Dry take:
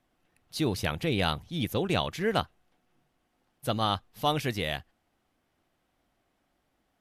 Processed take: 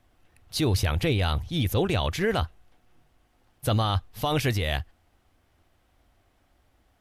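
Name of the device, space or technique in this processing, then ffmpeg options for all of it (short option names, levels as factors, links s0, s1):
car stereo with a boomy subwoofer: -af "lowshelf=f=120:t=q:w=1.5:g=8.5,alimiter=limit=0.0841:level=0:latency=1:release=21,volume=2.11"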